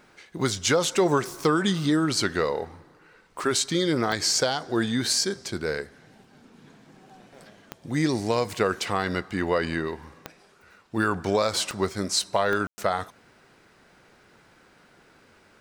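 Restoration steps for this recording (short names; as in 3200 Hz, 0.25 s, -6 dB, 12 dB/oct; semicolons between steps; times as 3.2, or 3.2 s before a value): de-click; room tone fill 12.67–12.78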